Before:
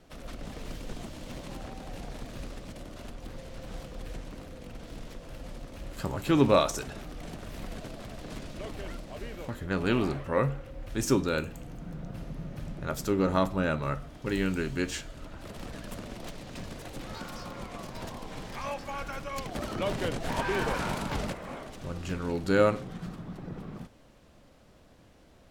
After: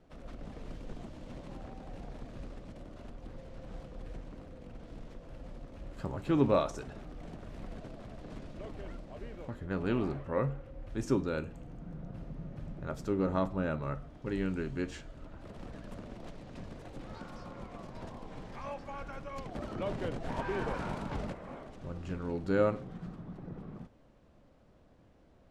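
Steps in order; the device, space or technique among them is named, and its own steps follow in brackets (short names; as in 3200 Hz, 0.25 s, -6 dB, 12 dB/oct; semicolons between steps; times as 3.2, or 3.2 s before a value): through cloth (LPF 9300 Hz 12 dB/oct; high shelf 2000 Hz -11 dB); gain -4 dB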